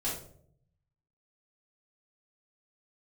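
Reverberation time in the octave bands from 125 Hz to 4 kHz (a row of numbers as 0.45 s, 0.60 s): 1.2 s, 0.85 s, 0.75 s, 0.55 s, 0.40 s, 0.35 s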